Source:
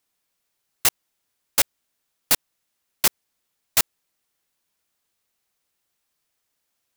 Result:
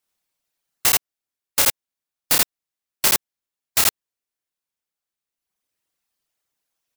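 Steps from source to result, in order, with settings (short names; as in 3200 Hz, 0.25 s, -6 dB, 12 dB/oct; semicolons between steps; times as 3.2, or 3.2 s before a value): reverb removal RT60 1.8 s; harmonic-percussive split harmonic -15 dB; loudspeakers at several distances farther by 11 m -3 dB, 28 m 0 dB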